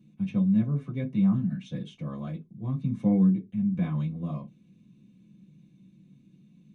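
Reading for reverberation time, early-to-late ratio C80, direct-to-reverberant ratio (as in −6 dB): non-exponential decay, 29.5 dB, −4.0 dB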